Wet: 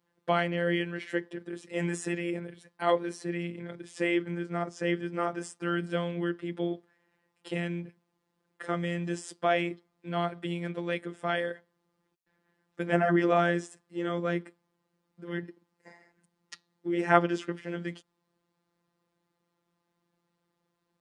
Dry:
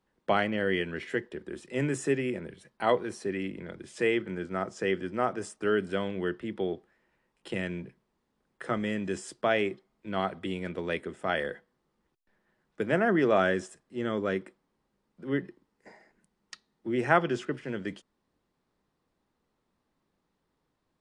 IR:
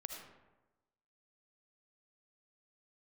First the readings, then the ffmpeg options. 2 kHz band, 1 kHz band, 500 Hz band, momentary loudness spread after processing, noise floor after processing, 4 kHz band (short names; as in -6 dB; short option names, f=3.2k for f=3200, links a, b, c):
-1.0 dB, +0.5 dB, -1.5 dB, 16 LU, -80 dBFS, -0.5 dB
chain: -af "afftfilt=real='hypot(re,im)*cos(PI*b)':imag='0':win_size=1024:overlap=0.75,highpass=60,volume=3dB"